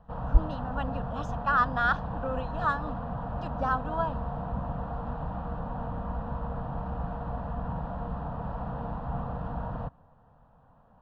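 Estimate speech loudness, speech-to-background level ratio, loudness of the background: -30.5 LUFS, 5.0 dB, -35.5 LUFS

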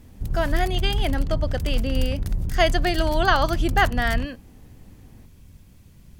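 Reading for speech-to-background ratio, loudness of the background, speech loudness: 4.0 dB, -28.5 LUFS, -24.5 LUFS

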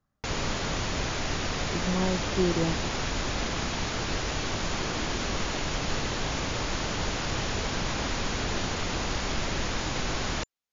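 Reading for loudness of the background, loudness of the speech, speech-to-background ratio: -30.5 LUFS, -30.5 LUFS, 0.0 dB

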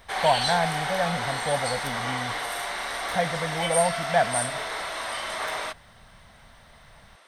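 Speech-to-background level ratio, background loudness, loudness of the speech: 0.5 dB, -28.5 LUFS, -28.0 LUFS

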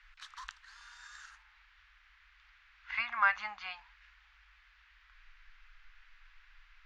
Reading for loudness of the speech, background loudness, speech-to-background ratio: -33.5 LUFS, -51.0 LUFS, 17.5 dB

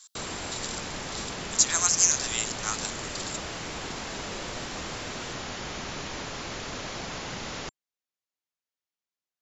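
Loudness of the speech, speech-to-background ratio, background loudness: -26.0 LUFS, 9.0 dB, -35.0 LUFS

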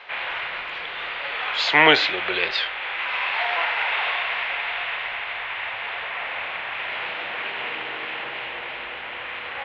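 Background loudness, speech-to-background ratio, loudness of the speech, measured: -26.5 LUFS, 7.0 dB, -19.5 LUFS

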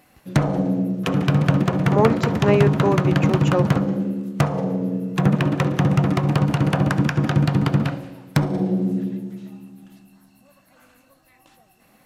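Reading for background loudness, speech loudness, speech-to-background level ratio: -21.0 LUFS, -22.5 LUFS, -1.5 dB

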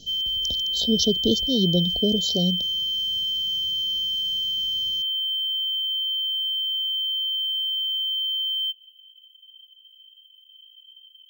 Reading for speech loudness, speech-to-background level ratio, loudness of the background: -24.5 LUFS, -1.5 dB, -23.0 LUFS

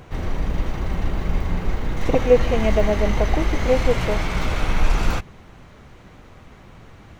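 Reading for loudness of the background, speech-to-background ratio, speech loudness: -25.5 LUFS, 3.0 dB, -22.5 LUFS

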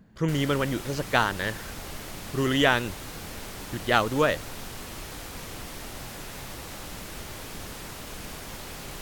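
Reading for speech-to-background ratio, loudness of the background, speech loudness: 12.5 dB, -38.5 LUFS, -26.0 LUFS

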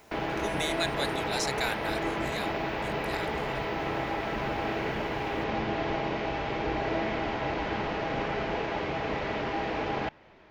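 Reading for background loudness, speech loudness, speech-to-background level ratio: -31.5 LUFS, -35.5 LUFS, -4.0 dB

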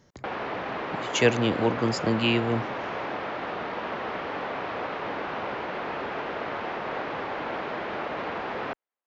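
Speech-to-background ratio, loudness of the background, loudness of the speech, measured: 7.0 dB, -32.5 LUFS, -25.5 LUFS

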